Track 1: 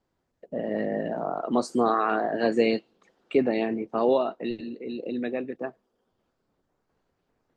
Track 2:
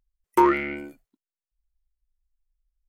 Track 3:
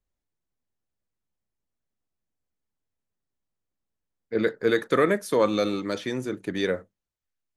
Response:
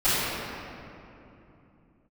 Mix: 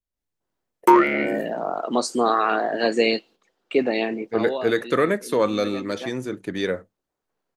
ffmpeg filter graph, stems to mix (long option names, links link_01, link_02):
-filter_complex "[0:a]highpass=frequency=300:poles=1,agate=range=-9dB:threshold=-51dB:ratio=16:detection=peak,adynamicequalizer=threshold=0.00794:dfrequency=2200:dqfactor=0.7:tfrequency=2200:tqfactor=0.7:attack=5:release=100:ratio=0.375:range=3.5:mode=boostabove:tftype=highshelf,adelay=400,volume=-6.5dB[link_01];[1:a]agate=range=-11dB:threshold=-51dB:ratio=16:detection=peak,highpass=160,adelay=500,volume=-0.5dB[link_02];[2:a]volume=-9.5dB,asplit=2[link_03][link_04];[link_04]apad=whole_len=351311[link_05];[link_01][link_05]sidechaincompress=threshold=-35dB:ratio=5:attack=8.5:release=1110[link_06];[link_06][link_02][link_03]amix=inputs=3:normalize=0,dynaudnorm=framelen=110:gausssize=3:maxgain=10.5dB"